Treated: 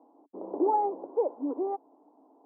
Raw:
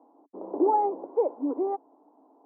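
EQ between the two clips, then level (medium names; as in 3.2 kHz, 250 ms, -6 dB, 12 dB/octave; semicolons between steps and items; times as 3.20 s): dynamic bell 300 Hz, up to -3 dB, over -35 dBFS, Q 0.78; low-pass 1.2 kHz 6 dB/octave; 0.0 dB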